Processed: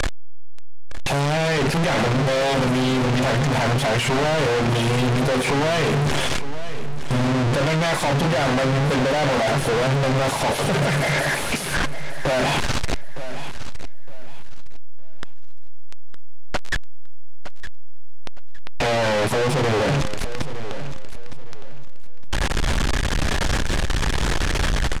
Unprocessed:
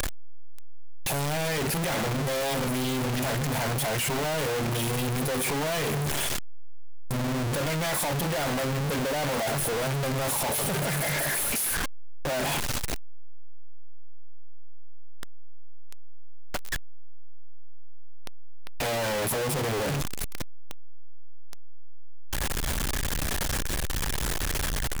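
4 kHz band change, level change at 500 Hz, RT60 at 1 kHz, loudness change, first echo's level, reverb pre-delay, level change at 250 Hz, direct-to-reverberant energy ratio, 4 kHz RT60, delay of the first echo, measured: +6.5 dB, +8.5 dB, no reverb audible, +6.5 dB, −13.0 dB, no reverb audible, +8.5 dB, no reverb audible, no reverb audible, 912 ms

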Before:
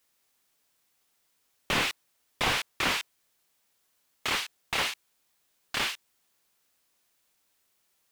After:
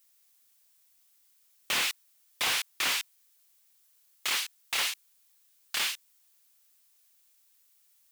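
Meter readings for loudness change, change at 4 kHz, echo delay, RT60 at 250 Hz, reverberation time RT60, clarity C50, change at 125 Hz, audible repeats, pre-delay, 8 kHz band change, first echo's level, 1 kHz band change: 0.0 dB, +1.0 dB, no echo audible, no reverb audible, no reverb audible, no reverb audible, below −15 dB, no echo audible, no reverb audible, +4.5 dB, no echo audible, −5.5 dB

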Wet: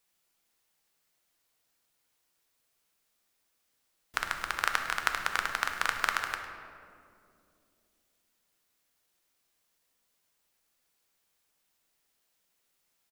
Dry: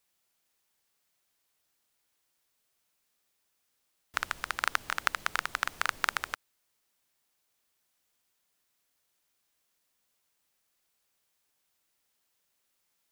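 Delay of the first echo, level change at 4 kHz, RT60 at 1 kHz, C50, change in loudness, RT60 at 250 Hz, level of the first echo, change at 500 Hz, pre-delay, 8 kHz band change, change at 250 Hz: 104 ms, +1.0 dB, 2.1 s, 5.5 dB, +1.0 dB, 3.7 s, −15.0 dB, +2.0 dB, 3 ms, +0.5 dB, +2.0 dB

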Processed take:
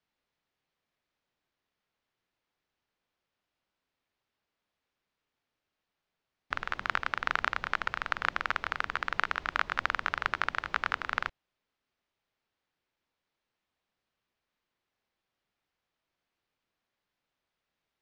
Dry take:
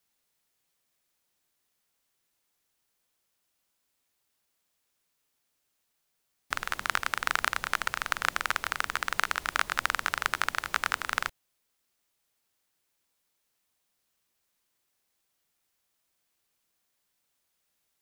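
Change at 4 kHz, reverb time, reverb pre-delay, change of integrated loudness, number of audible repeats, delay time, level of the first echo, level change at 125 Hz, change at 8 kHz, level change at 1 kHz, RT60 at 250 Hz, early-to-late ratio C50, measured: −5.5 dB, no reverb audible, no reverb audible, −2.0 dB, no echo audible, no echo audible, no echo audible, 0.0 dB, −17.0 dB, −1.0 dB, no reverb audible, no reverb audible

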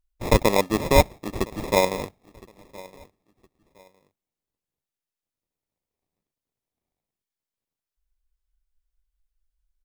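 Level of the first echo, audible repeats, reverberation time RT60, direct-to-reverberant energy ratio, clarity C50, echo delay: −22.0 dB, 2, no reverb audible, no reverb audible, no reverb audible, 1,014 ms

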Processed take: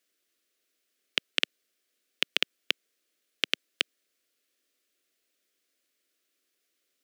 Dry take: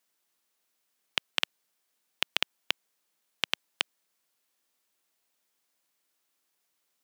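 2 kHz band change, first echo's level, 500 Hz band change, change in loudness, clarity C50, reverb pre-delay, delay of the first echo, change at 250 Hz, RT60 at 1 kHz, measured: +2.0 dB, no echo audible, +3.0 dB, +2.0 dB, no reverb audible, no reverb audible, no echo audible, +3.5 dB, no reverb audible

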